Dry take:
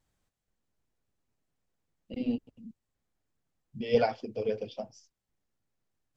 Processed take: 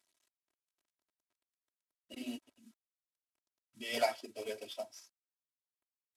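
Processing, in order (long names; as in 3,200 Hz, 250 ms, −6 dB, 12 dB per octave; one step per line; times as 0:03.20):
variable-slope delta modulation 64 kbit/s
high-pass filter 1,300 Hz 6 dB per octave
comb filter 3.1 ms, depth 95%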